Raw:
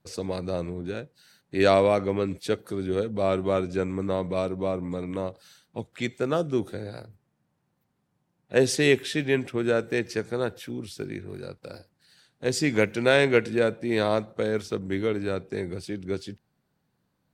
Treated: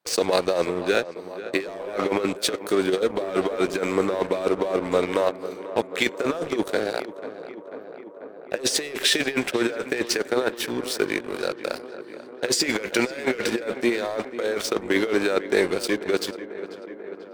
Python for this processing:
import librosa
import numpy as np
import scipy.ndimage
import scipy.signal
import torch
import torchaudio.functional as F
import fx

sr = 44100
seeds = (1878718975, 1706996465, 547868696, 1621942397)

p1 = scipy.signal.sosfilt(scipy.signal.butter(2, 450.0, 'highpass', fs=sr, output='sos'), x)
p2 = fx.leveller(p1, sr, passes=3)
p3 = fx.over_compress(p2, sr, threshold_db=-22.0, ratio=-0.5)
y = p3 + fx.echo_tape(p3, sr, ms=491, feedback_pct=83, wet_db=-13.0, lp_hz=2100.0, drive_db=1.0, wow_cents=9, dry=0)